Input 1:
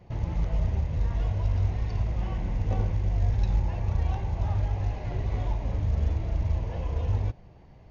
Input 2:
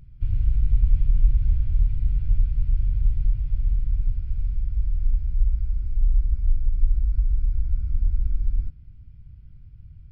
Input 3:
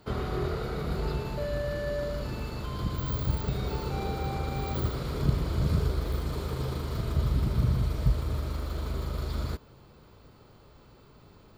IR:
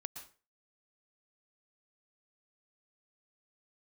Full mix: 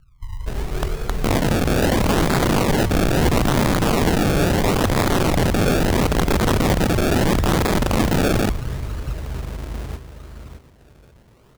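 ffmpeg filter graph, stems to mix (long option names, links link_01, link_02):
-filter_complex "[0:a]lowshelf=frequency=170:gain=10,adelay=1150,volume=2.5dB,asplit=3[link_01][link_02][link_03];[link_02]volume=-9dB[link_04];[link_03]volume=-19.5dB[link_05];[1:a]volume=-8.5dB,asplit=3[link_06][link_07][link_08];[link_07]volume=-17.5dB[link_09];[link_08]volume=-10.5dB[link_10];[2:a]adelay=400,volume=1.5dB,asplit=3[link_11][link_12][link_13];[link_12]volume=-22.5dB[link_14];[link_13]volume=-8dB[link_15];[3:a]atrim=start_sample=2205[link_16];[link_04][link_09][link_14]amix=inputs=3:normalize=0[link_17];[link_17][link_16]afir=irnorm=-1:irlink=0[link_18];[link_05][link_10][link_15]amix=inputs=3:normalize=0,aecho=0:1:616|1232|1848:1|0.18|0.0324[link_19];[link_01][link_06][link_11][link_18][link_19]amix=inputs=5:normalize=0,acrusher=samples=30:mix=1:aa=0.000001:lfo=1:lforange=30:lforate=0.75,aeval=exprs='(mod(4.22*val(0)+1,2)-1)/4.22':channel_layout=same"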